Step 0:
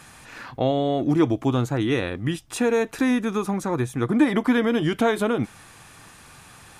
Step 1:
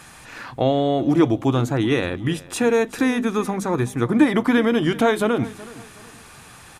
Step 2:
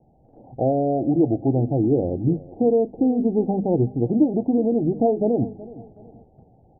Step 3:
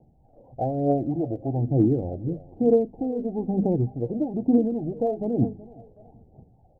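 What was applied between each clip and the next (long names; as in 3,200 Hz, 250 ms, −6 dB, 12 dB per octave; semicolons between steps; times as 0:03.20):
mains-hum notches 50/100/150/200/250 Hz; repeating echo 373 ms, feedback 34%, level −19 dB; level +3 dB
Butterworth low-pass 800 Hz 96 dB per octave; noise gate −47 dBFS, range −6 dB; speech leveller within 3 dB 0.5 s
phase shifter 1.1 Hz, delay 2.1 ms, feedback 60%; level −5.5 dB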